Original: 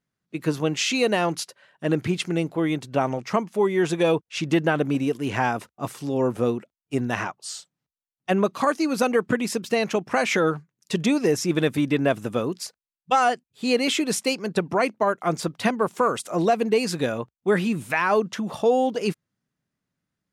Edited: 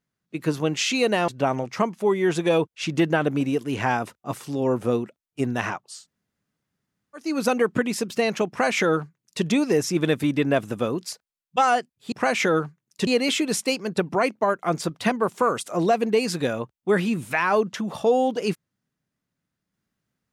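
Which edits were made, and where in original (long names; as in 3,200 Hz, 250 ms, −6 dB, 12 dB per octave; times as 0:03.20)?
0:01.28–0:02.82: remove
0:07.49–0:08.79: fill with room tone, crossfade 0.24 s
0:10.03–0:10.98: duplicate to 0:13.66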